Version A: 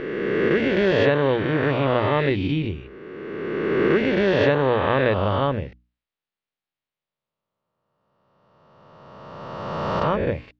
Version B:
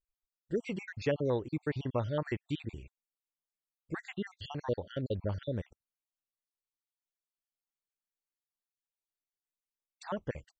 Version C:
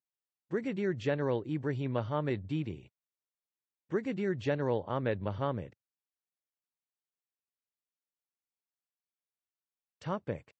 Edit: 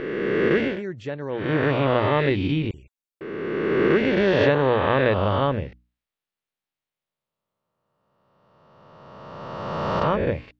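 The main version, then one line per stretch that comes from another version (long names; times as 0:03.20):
A
0:00.71–0:01.40: punch in from C, crossfade 0.24 s
0:02.71–0:03.21: punch in from B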